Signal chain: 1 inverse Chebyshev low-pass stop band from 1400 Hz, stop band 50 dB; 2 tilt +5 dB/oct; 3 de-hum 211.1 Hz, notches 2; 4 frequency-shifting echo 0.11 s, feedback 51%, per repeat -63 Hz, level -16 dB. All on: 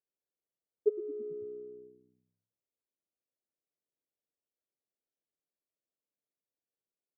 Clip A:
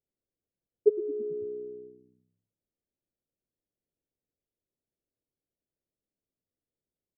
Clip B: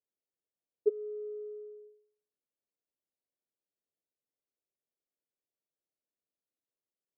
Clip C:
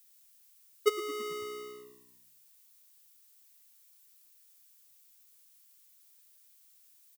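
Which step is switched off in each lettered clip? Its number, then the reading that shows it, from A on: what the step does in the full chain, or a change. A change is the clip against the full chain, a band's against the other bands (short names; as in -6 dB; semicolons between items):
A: 2, loudness change +6.0 LU; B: 4, echo-to-direct -14.5 dB to none; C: 1, momentary loudness spread change +3 LU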